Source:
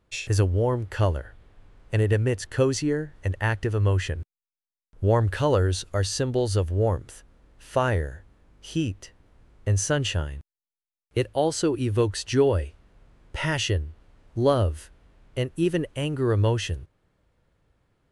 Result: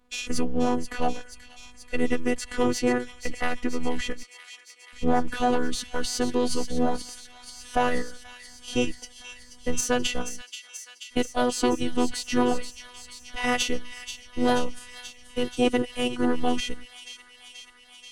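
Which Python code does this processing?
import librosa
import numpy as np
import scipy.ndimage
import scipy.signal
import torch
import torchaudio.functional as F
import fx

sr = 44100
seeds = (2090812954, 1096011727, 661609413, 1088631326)

p1 = fx.diode_clip(x, sr, knee_db=-24.0)
p2 = fx.dynamic_eq(p1, sr, hz=110.0, q=3.7, threshold_db=-36.0, ratio=4.0, max_db=5)
p3 = fx.level_steps(p2, sr, step_db=14)
p4 = p2 + (p3 * 10.0 ** (2.5 / 20.0))
p5 = fx.robotise(p4, sr, hz=319.0)
p6 = fx.pitch_keep_formants(p5, sr, semitones=-4.5)
y = p6 + fx.echo_wet_highpass(p6, sr, ms=482, feedback_pct=76, hz=2400.0, wet_db=-9, dry=0)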